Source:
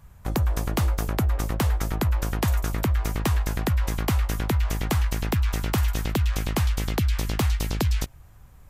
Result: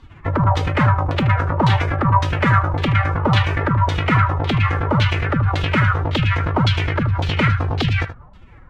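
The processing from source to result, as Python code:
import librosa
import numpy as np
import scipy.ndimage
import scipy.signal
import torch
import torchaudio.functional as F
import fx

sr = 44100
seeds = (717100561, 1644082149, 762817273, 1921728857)

y = fx.pitch_keep_formants(x, sr, semitones=10.0)
y = y + 10.0 ** (-11.5 / 20.0) * np.pad(y, (int(77 * sr / 1000.0), 0))[:len(y)]
y = fx.filter_lfo_lowpass(y, sr, shape='saw_down', hz=1.8, low_hz=810.0, high_hz=3900.0, q=2.7)
y = y * 10.0 ** (7.0 / 20.0)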